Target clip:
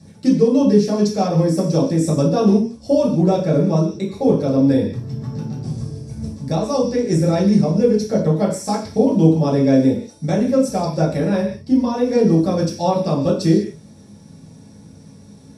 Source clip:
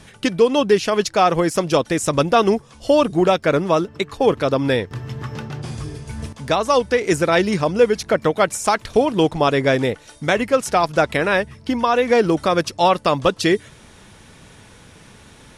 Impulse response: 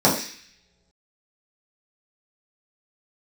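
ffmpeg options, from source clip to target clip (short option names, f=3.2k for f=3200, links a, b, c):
-filter_complex "[0:a]equalizer=f=1.2k:w=0.37:g=-15[a];[1:a]atrim=start_sample=2205,afade=t=out:st=0.26:d=0.01,atrim=end_sample=11907[b];[a][b]afir=irnorm=-1:irlink=0,volume=-17dB"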